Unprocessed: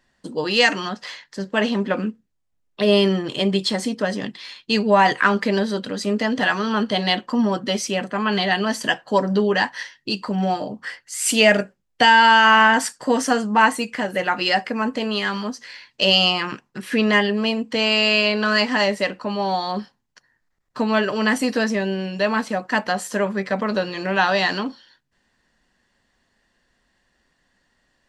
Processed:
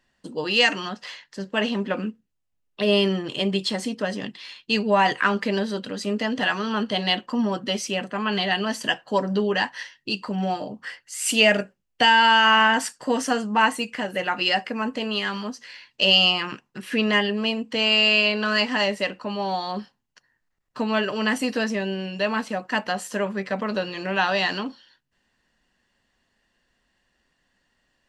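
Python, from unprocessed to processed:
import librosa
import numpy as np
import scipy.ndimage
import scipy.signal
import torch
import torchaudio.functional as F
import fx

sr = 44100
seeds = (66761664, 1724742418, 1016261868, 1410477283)

y = fx.peak_eq(x, sr, hz=2800.0, db=6.0, octaves=0.22)
y = y * 10.0 ** (-4.0 / 20.0)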